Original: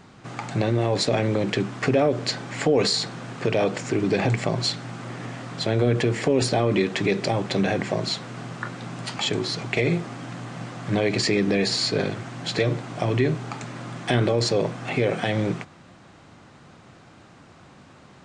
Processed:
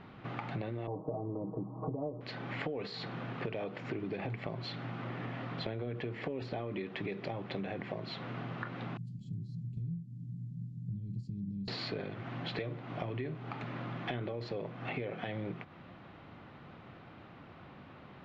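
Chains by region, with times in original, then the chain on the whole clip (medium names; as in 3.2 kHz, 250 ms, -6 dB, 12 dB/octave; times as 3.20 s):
0.87–2.21 s: steep low-pass 1.1 kHz 72 dB/octave + comb 6.4 ms, depth 98%
8.97–11.68 s: Chebyshev band-stop 170–8900 Hz, order 3 + dynamic bell 480 Hz, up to -6 dB, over -48 dBFS, Q 0.87
whole clip: low-pass 3.4 kHz 24 dB/octave; band-stop 1.6 kHz, Q 28; compression 6:1, threshold -33 dBFS; trim -3 dB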